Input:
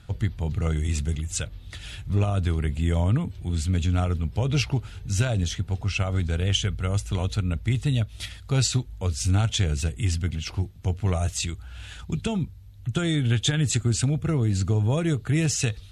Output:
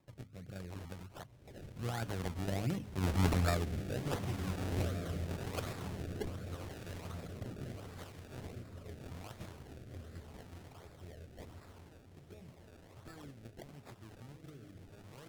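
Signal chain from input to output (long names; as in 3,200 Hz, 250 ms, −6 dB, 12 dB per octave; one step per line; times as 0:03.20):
source passing by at 0:03.25, 39 m/s, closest 14 metres
low-pass filter 3,700 Hz 24 dB per octave
spectral tilt +2.5 dB per octave
mains-hum notches 50/100/150/200/250 Hz
in parallel at −0.5 dB: downward compressor, threshold −52 dBFS, peak gain reduction 23 dB
on the sum: feedback delay with all-pass diffusion 1,537 ms, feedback 43%, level −5 dB
sample-and-hold swept by an LFO 30×, swing 100% 1.3 Hz
rotating-speaker cabinet horn 0.8 Hz
wrong playback speed 24 fps film run at 25 fps
level +1.5 dB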